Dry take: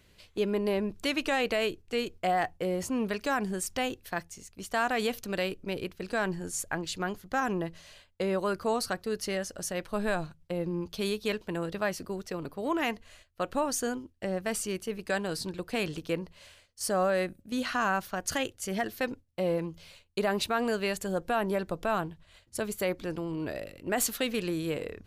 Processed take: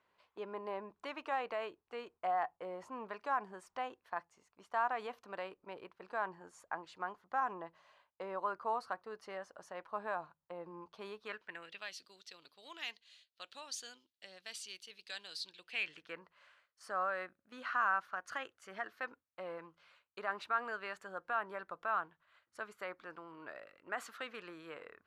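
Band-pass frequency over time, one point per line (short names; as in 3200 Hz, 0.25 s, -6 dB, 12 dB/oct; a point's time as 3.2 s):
band-pass, Q 2.8
11.14 s 1000 Hz
11.94 s 3800 Hz
15.5 s 3800 Hz
16.23 s 1300 Hz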